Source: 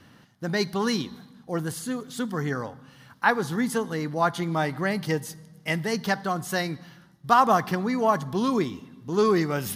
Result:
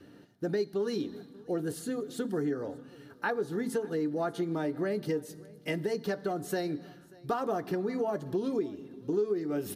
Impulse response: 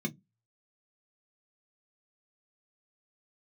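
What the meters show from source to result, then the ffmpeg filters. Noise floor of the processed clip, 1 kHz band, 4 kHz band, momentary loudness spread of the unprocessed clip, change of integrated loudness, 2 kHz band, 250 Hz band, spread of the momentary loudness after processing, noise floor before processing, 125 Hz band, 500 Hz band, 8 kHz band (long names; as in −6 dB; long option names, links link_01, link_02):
−55 dBFS, −14.0 dB, −12.0 dB, 11 LU, −7.5 dB, −12.0 dB, −5.5 dB, 9 LU, −55 dBFS, −9.5 dB, −3.5 dB, −10.0 dB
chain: -filter_complex "[0:a]asplit=2[link_01][link_02];[1:a]atrim=start_sample=2205,asetrate=83790,aresample=44100[link_03];[link_02][link_03]afir=irnorm=-1:irlink=0,volume=-0.5dB[link_04];[link_01][link_04]amix=inputs=2:normalize=0,acompressor=threshold=-23dB:ratio=5,asplit=2[link_05][link_06];[link_06]aecho=0:1:587:0.0668[link_07];[link_05][link_07]amix=inputs=2:normalize=0,volume=-5.5dB"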